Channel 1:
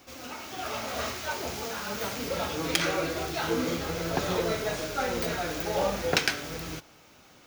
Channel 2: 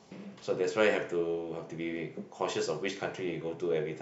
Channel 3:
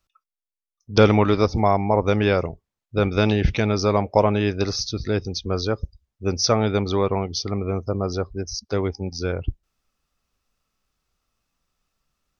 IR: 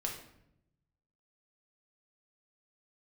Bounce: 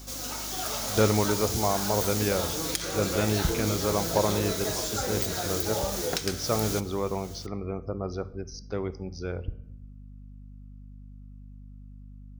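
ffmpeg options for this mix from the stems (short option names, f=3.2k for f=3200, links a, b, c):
-filter_complex "[0:a]highshelf=f=11k:g=-11.5,volume=1.5dB[a];[1:a]adelay=2350,volume=-2.5dB[b];[2:a]volume=-10dB,asplit=2[c][d];[d]volume=-10dB[e];[a][b]amix=inputs=2:normalize=0,aexciter=amount=5.7:drive=6:freq=3.6k,acompressor=threshold=-26dB:ratio=4,volume=0dB[f];[3:a]atrim=start_sample=2205[g];[e][g]afir=irnorm=-1:irlink=0[h];[c][f][h]amix=inputs=3:normalize=0,equalizer=f=4.5k:w=1:g=-6,aeval=exprs='val(0)+0.00631*(sin(2*PI*50*n/s)+sin(2*PI*2*50*n/s)/2+sin(2*PI*3*50*n/s)/3+sin(2*PI*4*50*n/s)/4+sin(2*PI*5*50*n/s)/5)':c=same"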